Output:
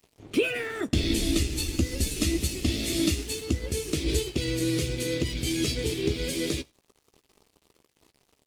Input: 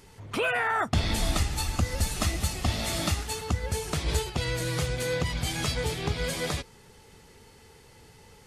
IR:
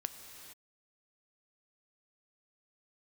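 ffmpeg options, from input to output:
-filter_complex "[0:a]firequalizer=gain_entry='entry(180,0);entry(310,14);entry(810,-18);entry(2400,3)':delay=0.05:min_phase=1,aeval=exprs='sgn(val(0))*max(abs(val(0))-0.00531,0)':channel_layout=same,asplit=2[link_01][link_02];[1:a]atrim=start_sample=2205,atrim=end_sample=4410,adelay=15[link_03];[link_02][link_03]afir=irnorm=-1:irlink=0,volume=-11dB[link_04];[link_01][link_04]amix=inputs=2:normalize=0,volume=-1dB"

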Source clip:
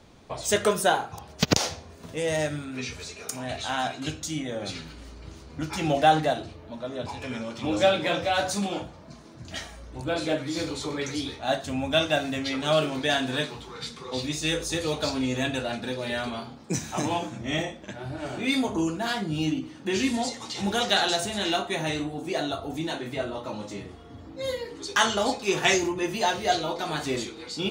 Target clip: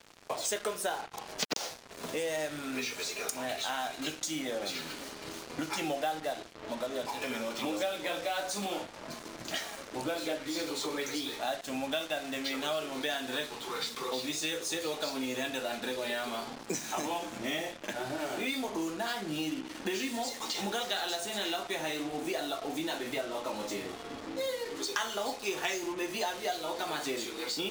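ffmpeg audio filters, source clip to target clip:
ffmpeg -i in.wav -af "highpass=310,acompressor=threshold=-40dB:ratio=5,acrusher=bits=7:mix=0:aa=0.5,volume=7dB" out.wav

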